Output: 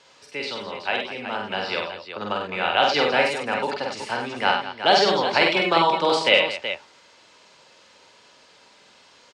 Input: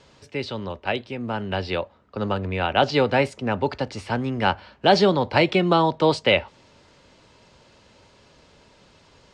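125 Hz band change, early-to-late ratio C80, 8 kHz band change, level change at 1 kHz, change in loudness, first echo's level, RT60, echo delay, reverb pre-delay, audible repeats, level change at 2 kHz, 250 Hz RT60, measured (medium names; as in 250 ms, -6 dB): -12.0 dB, no reverb, no reading, +2.0 dB, +0.5 dB, -2.5 dB, no reverb, 48 ms, no reverb, 4, +4.0 dB, no reverb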